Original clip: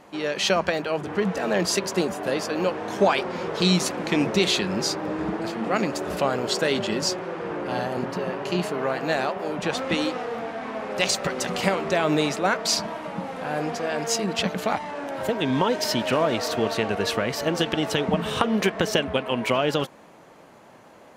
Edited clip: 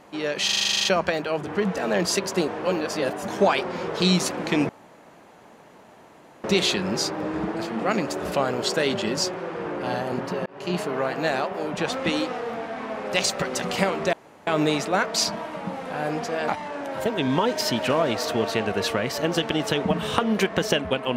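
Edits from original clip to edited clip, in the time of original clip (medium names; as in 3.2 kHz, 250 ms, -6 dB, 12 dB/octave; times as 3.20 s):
0.45 s: stutter 0.04 s, 11 plays
2.08–2.88 s: reverse
4.29 s: insert room tone 1.75 s
8.31–8.62 s: fade in
11.98 s: insert room tone 0.34 s
13.99–14.71 s: delete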